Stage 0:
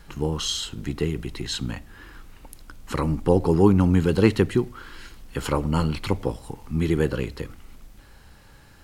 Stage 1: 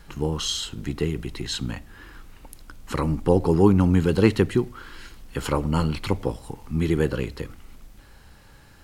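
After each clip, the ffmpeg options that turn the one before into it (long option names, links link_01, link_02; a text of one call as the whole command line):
ffmpeg -i in.wav -af anull out.wav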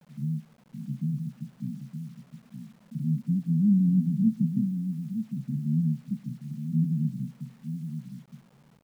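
ffmpeg -i in.wav -af "asuperpass=centerf=180:order=12:qfactor=1.6,aecho=1:1:918:0.398,acrusher=bits=9:mix=0:aa=0.000001" out.wav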